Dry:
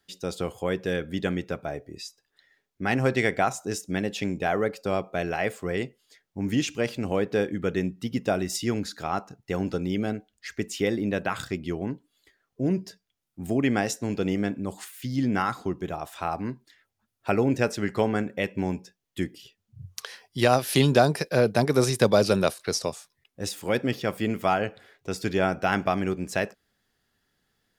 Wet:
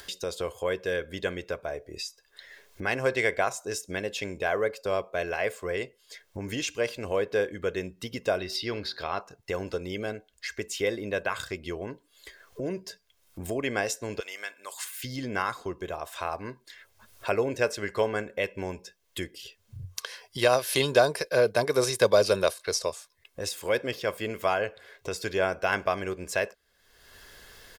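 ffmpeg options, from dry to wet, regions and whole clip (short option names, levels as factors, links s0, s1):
-filter_complex "[0:a]asettb=1/sr,asplit=3[s0][s1][s2];[s0]atrim=end=8.384[s3];[s1]atrim=start=8.38:end=9.21,asetpts=PTS-STARTPTS,afade=t=in:d=0.004:c=qsin,afade=t=out:st=0.826:d=0.004:c=qsin,highshelf=f=5600:t=q:w=3:g=-8.5,bandreject=f=126.1:t=h:w=4,bandreject=f=252.2:t=h:w=4,bandreject=f=378.3:t=h:w=4,bandreject=f=504.4:t=h:w=4,bandreject=f=630.5:t=h:w=4,bandreject=f=756.6:t=h:w=4,bandreject=f=882.7:t=h:w=4,bandreject=f=1008.8:t=h:w=4,bandreject=f=1134.9:t=h:w=4,bandreject=f=1261:t=h:w=4,bandreject=f=1387.1:t=h:w=4,bandreject=f=1513.2:t=h:w=4,bandreject=f=1639.3:t=h:w=4,bandreject=f=1765.4:t=h:w=4[s4];[s2]atrim=start=9.206[s5];[s3][s4]acrossfade=d=0.004:c1=hsin:c2=qsin[s6];[s6][s5]acrossfade=d=0.004:c1=qsin:c2=hsin,asettb=1/sr,asplit=3[s7][s8][s9];[s7]atrim=end=14.204[s10];[s8]atrim=start=14.2:end=14.85,asetpts=PTS-STARTPTS,afade=t=in:d=0.004:c=qsin,afade=t=out:st=0.646:d=0.004:c=qsin,highpass=1300,highshelf=f=8800:g=5.5[s11];[s9]atrim=start=14.846[s12];[s10][s11]acrossfade=d=0.004:c1=hsin:c2=qsin[s13];[s13][s12]acrossfade=d=0.004:c1=qsin:c2=hsin,equalizer=f=150:w=0.89:g=-11.5,aecho=1:1:1.9:0.45,acompressor=mode=upward:threshold=0.0355:ratio=2.5,volume=0.891"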